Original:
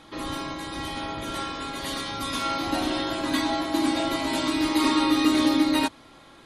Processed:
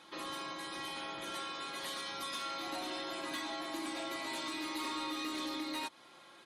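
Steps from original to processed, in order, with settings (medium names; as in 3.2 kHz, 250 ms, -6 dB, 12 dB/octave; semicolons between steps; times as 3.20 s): high-pass 570 Hz 6 dB/octave; comb 5.6 ms, depth 44%; saturation -20.5 dBFS, distortion -17 dB; compression 3:1, threshold -33 dBFS, peak gain reduction 7 dB; trim -5.5 dB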